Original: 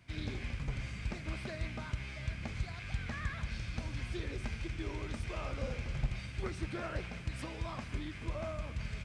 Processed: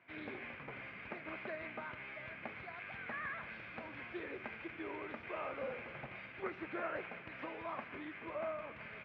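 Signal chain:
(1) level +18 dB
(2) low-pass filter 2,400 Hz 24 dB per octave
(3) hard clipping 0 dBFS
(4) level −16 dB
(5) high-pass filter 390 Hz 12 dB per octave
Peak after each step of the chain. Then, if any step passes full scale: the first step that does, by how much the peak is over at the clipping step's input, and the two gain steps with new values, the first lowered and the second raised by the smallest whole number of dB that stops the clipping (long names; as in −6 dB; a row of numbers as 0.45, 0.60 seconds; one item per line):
−4.5, −4.5, −4.5, −20.5, −27.5 dBFS
no step passes full scale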